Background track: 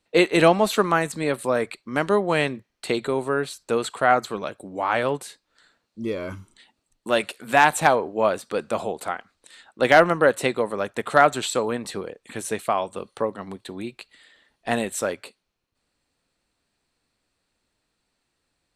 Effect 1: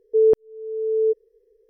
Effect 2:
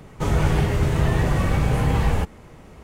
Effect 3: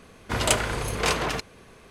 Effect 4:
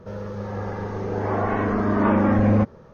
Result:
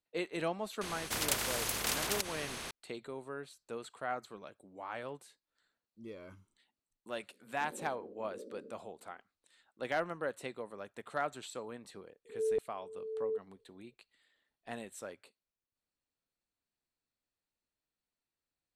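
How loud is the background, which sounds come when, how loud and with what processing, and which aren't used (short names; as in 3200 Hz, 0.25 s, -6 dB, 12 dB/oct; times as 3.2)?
background track -19.5 dB
0.81 add 3 -10.5 dB + spectral compressor 4:1
7.31 add 3 -17 dB + FFT band-pass 190–600 Hz
12.25 add 1 -16.5 dB + spectral swells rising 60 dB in 0.31 s
not used: 2, 4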